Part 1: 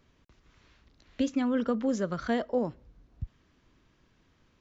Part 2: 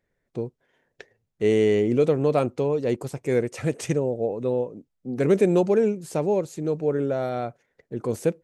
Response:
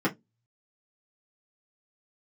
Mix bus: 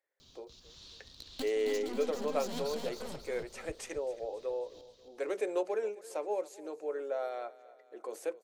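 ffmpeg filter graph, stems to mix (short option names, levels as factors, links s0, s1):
-filter_complex "[0:a]highshelf=f=2800:t=q:w=3:g=12,aeval=exprs='(tanh(70.8*val(0)+0.45)-tanh(0.45))/70.8':c=same,adelay=200,volume=1.26,asplit=2[s0][s1];[s1]volume=0.447[s2];[1:a]highpass=f=480:w=0.5412,highpass=f=480:w=1.3066,volume=0.316,asplit=4[s3][s4][s5][s6];[s4]volume=0.106[s7];[s5]volume=0.133[s8];[s6]apad=whole_len=212109[s9];[s0][s9]sidechaincompress=threshold=0.00282:ratio=8:attack=21:release=121[s10];[2:a]atrim=start_sample=2205[s11];[s7][s11]afir=irnorm=-1:irlink=0[s12];[s2][s8]amix=inputs=2:normalize=0,aecho=0:1:270|540|810|1080|1350|1620|1890:1|0.49|0.24|0.118|0.0576|0.0282|0.0138[s13];[s10][s3][s12][s13]amix=inputs=4:normalize=0"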